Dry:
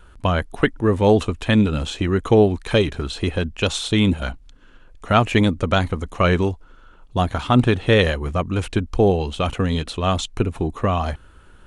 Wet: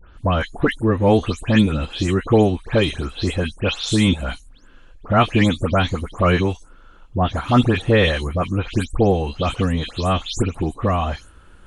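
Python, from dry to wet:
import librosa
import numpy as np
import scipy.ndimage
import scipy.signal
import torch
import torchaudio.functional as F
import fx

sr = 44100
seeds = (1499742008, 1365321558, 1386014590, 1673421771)

y = fx.spec_delay(x, sr, highs='late', ms=173)
y = F.gain(torch.from_numpy(y), 1.0).numpy()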